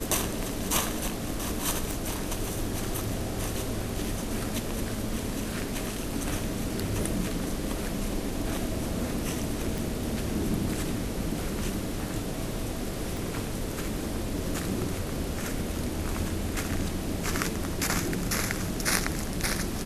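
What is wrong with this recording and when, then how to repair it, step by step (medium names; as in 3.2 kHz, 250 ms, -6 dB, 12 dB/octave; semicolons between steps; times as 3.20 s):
1.91 s: pop
9.78 s: pop
13.17 s: pop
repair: de-click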